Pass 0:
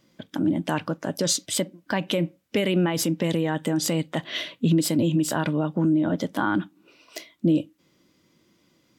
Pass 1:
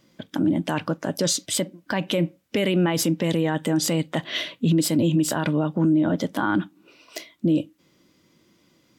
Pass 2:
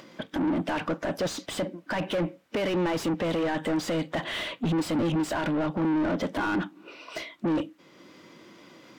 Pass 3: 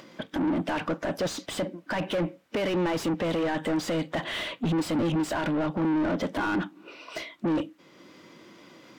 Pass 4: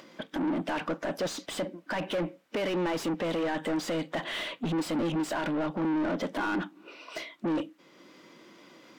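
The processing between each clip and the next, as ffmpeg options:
-af "alimiter=limit=-15.5dB:level=0:latency=1:release=19,volume=2.5dB"
-filter_complex "[0:a]asplit=2[a][b];[b]highpass=f=720:p=1,volume=27dB,asoftclip=type=tanh:threshold=-12.5dB[c];[a][c]amix=inputs=2:normalize=0,lowpass=f=1.3k:p=1,volume=-6dB,acompressor=mode=upward:threshold=-37dB:ratio=2.5,volume=-7dB"
-af anull
-af "equalizer=f=87:w=1.2:g=-12,volume=-2dB"

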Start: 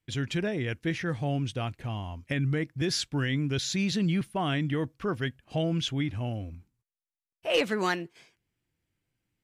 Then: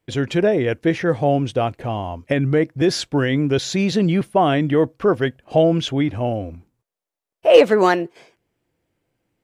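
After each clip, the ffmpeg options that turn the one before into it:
-af "equalizer=f=550:w=0.63:g=13.5,volume=4dB"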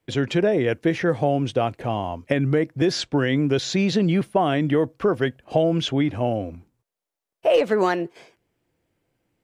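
-filter_complex "[0:a]acrossover=split=100|7400[a][b][c];[a]acompressor=threshold=-46dB:ratio=4[d];[b]acompressor=threshold=-16dB:ratio=4[e];[c]acompressor=threshold=-55dB:ratio=4[f];[d][e][f]amix=inputs=3:normalize=0"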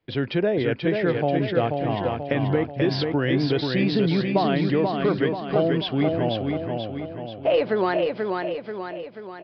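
-filter_complex "[0:a]asplit=2[a][b];[b]aecho=0:1:485|970|1455|1940|2425|2910|3395:0.631|0.328|0.171|0.0887|0.0461|0.024|0.0125[c];[a][c]amix=inputs=2:normalize=0,aresample=11025,aresample=44100,volume=-2.5dB"

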